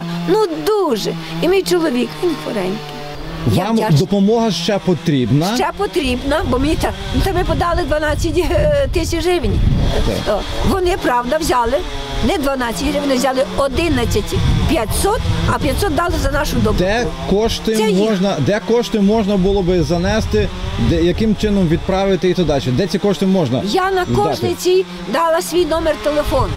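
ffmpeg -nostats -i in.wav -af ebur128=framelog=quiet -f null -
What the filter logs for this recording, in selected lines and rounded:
Integrated loudness:
  I:         -16.2 LUFS
  Threshold: -26.3 LUFS
Loudness range:
  LRA:         1.6 LU
  Threshold: -36.3 LUFS
  LRA low:   -17.0 LUFS
  LRA high:  -15.4 LUFS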